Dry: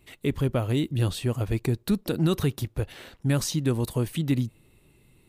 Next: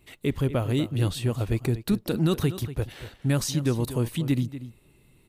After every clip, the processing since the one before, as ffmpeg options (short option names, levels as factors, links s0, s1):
-filter_complex "[0:a]asplit=2[s0][s1];[s1]adelay=239.1,volume=0.224,highshelf=f=4000:g=-5.38[s2];[s0][s2]amix=inputs=2:normalize=0"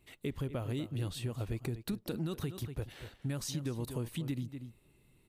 -af "acompressor=threshold=0.0562:ratio=6,volume=0.422"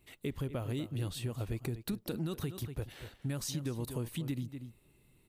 -af "highshelf=f=11000:g=5"